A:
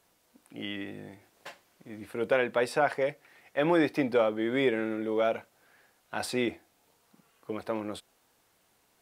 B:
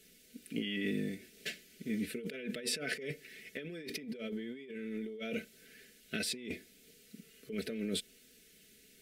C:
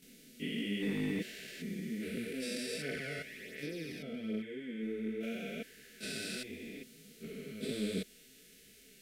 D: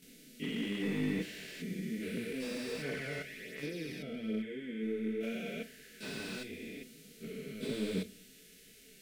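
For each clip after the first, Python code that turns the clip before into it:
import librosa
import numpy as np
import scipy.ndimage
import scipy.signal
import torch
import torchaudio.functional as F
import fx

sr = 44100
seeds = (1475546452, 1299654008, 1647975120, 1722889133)

y1 = scipy.signal.sosfilt(scipy.signal.cheby1(2, 1.0, [390.0, 2200.0], 'bandstop', fs=sr, output='sos'), x)
y1 = y1 + 0.72 * np.pad(y1, (int(4.6 * sr / 1000.0), 0))[:len(y1)]
y1 = fx.over_compress(y1, sr, threshold_db=-40.0, ratio=-1.0)
y2 = fx.spec_steps(y1, sr, hold_ms=400)
y2 = np.clip(10.0 ** (31.5 / 20.0) * y2, -1.0, 1.0) / 10.0 ** (31.5 / 20.0)
y2 = fx.chorus_voices(y2, sr, voices=2, hz=0.69, base_ms=23, depth_ms=4.1, mix_pct=70)
y2 = y2 * librosa.db_to_amplitude(6.5)
y3 = fx.room_shoebox(y2, sr, seeds[0], volume_m3=330.0, walls='furnished', distance_m=0.44)
y3 = fx.slew_limit(y3, sr, full_power_hz=21.0)
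y3 = y3 * librosa.db_to_amplitude(1.0)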